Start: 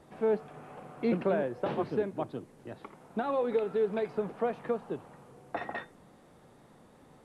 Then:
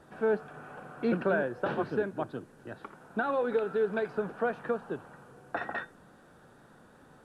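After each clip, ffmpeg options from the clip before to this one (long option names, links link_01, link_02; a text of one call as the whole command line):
ffmpeg -i in.wav -af "equalizer=frequency=1500:width_type=o:width=0.35:gain=12,bandreject=frequency=2100:width=9.3" out.wav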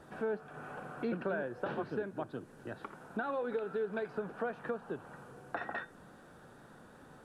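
ffmpeg -i in.wav -af "acompressor=threshold=-40dB:ratio=2,volume=1dB" out.wav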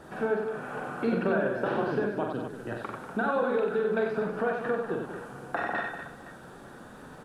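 ffmpeg -i in.wav -af "bandreject=frequency=50:width_type=h:width=6,bandreject=frequency=100:width_type=h:width=6,bandreject=frequency=150:width_type=h:width=6,aecho=1:1:44|93|192|244|515:0.596|0.596|0.282|0.316|0.126,volume=6.5dB" out.wav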